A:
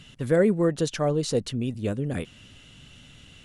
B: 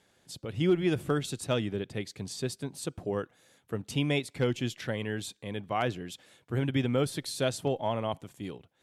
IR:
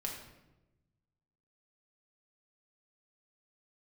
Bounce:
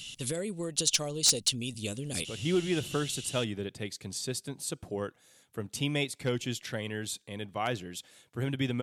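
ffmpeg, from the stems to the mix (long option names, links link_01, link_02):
-filter_complex "[0:a]acompressor=threshold=-25dB:ratio=6,aexciter=amount=7.8:drive=5.4:freq=2500,volume=-7dB[link_01];[1:a]equalizer=frequency=9500:width_type=o:width=2.5:gain=8.5,adelay=1850,volume=-3dB[link_02];[link_01][link_02]amix=inputs=2:normalize=0,aeval=exprs='0.2*(abs(mod(val(0)/0.2+3,4)-2)-1)':channel_layout=same"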